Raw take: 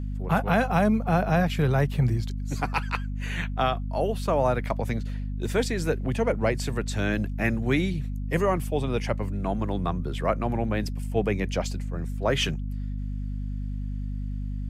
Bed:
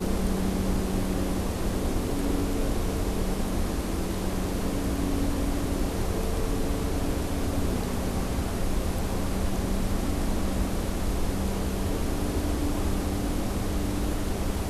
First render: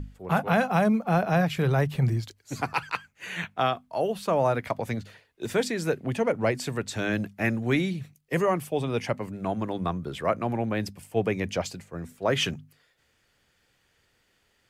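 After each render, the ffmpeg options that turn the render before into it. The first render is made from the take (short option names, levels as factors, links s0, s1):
-af "bandreject=f=50:t=h:w=6,bandreject=f=100:t=h:w=6,bandreject=f=150:t=h:w=6,bandreject=f=200:t=h:w=6,bandreject=f=250:t=h:w=6"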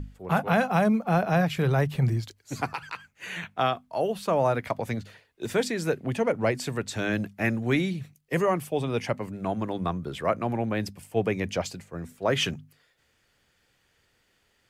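-filter_complex "[0:a]asettb=1/sr,asplit=3[s0][s1][s2];[s0]atrim=end=2.754[s3];[s1]atrim=start=2.75:end=3.56,asetpts=PTS-STARTPTS,afade=t=in:d=0.004:c=qsin,afade=t=out:st=0.806:d=0.004:c=qsin,acompressor=threshold=0.0316:ratio=6:attack=3.2:release=140:knee=1:detection=peak[s4];[s2]atrim=start=3.556[s5];[s3][s4]acrossfade=d=0.004:c1=hsin:c2=qsin[s6];[s6][s5]acrossfade=d=0.004:c1=qsin:c2=hsin"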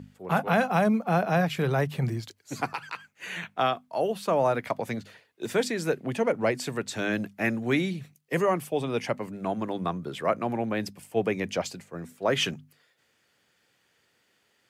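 -af "highpass=150"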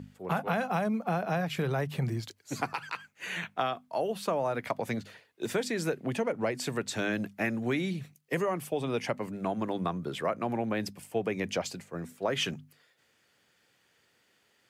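-af "acompressor=threshold=0.0501:ratio=6"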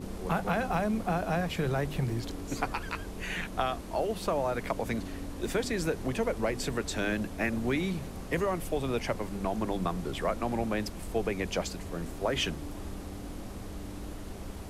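-filter_complex "[1:a]volume=0.237[s0];[0:a][s0]amix=inputs=2:normalize=0"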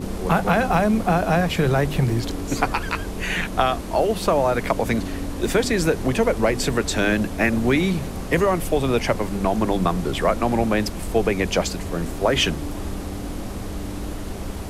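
-af "volume=3.35"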